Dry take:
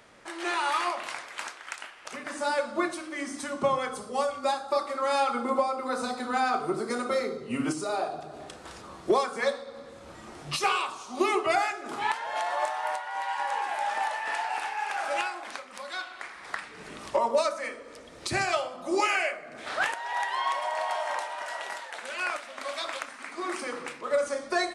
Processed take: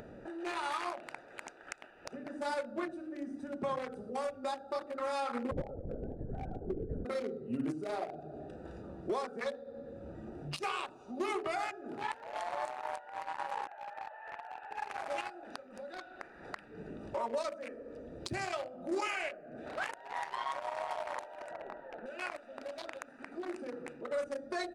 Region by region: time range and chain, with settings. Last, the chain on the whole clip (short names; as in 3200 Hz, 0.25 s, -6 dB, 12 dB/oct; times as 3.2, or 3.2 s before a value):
5.51–7.05 running mean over 38 samples + LPC vocoder at 8 kHz whisper
13.67–14.71 HPF 850 Hz + air absorption 460 m
21.51–22.06 LPF 1900 Hz + low shelf 290 Hz +10.5 dB
whole clip: Wiener smoothing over 41 samples; limiter -23 dBFS; upward compressor, threshold -34 dBFS; gain -3.5 dB